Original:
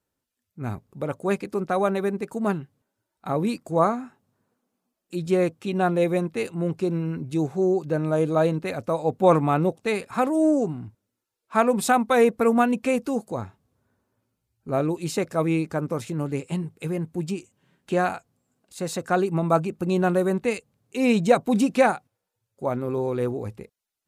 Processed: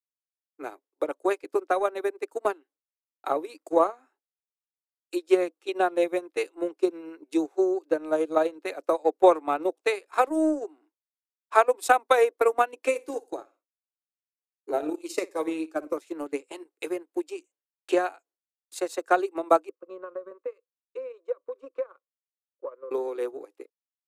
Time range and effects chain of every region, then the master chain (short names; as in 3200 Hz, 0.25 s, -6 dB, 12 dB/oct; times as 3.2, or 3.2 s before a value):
12.88–15.97 flutter echo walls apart 9.7 m, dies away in 0.36 s + cascading phaser falling 1.3 Hz
19.69–22.91 double band-pass 760 Hz, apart 1.1 oct + compressor 2.5:1, threshold -34 dBFS
whole clip: steep high-pass 290 Hz 96 dB/oct; expander -48 dBFS; transient shaper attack +9 dB, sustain -11 dB; gain -5 dB